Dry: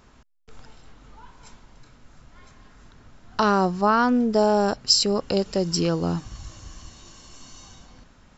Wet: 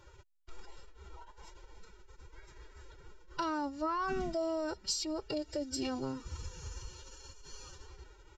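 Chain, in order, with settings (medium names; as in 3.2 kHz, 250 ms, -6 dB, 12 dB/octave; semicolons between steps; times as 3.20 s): comb 3.3 ms, depth 69%; compression 2.5:1, threshold -32 dBFS, peak gain reduction 13.5 dB; formant-preserving pitch shift +7.5 st; trim -5 dB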